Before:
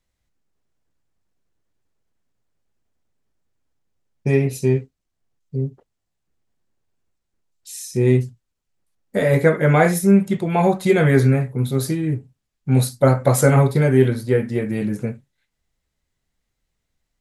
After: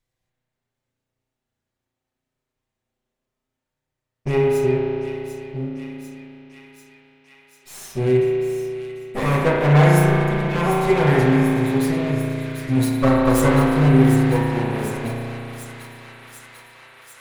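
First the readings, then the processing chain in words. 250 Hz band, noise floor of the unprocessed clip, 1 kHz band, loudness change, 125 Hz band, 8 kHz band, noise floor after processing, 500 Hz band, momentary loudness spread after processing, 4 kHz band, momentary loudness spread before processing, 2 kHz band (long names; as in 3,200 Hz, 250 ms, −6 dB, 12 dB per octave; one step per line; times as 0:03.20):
+1.0 dB, −78 dBFS, +2.5 dB, −0.5 dB, −0.5 dB, −4.0 dB, −83 dBFS, −0.5 dB, 18 LU, +3.0 dB, 13 LU, +1.0 dB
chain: lower of the sound and its delayed copy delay 7.8 ms
delay with a high-pass on its return 744 ms, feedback 74%, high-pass 2,000 Hz, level −8 dB
spring reverb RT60 3.1 s, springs 34 ms, chirp 30 ms, DRR −3 dB
level −3.5 dB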